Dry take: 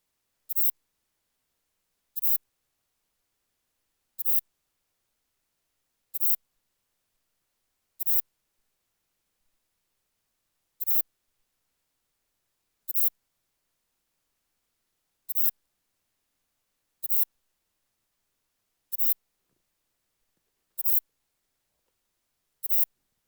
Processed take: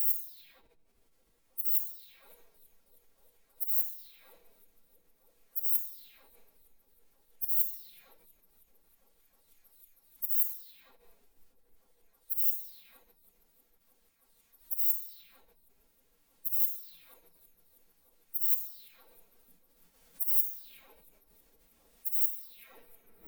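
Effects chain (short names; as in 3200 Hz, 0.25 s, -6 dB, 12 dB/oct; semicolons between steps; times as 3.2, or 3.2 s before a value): spectral delay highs early, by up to 0.578 s; in parallel at -9.5 dB: soft clip -17 dBFS, distortion -14 dB; on the sum: shoebox room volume 1200 m³, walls mixed, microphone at 1.3 m; formant-preserving pitch shift +5 st; repeats that get brighter 0.318 s, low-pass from 200 Hz, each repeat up 1 oct, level -3 dB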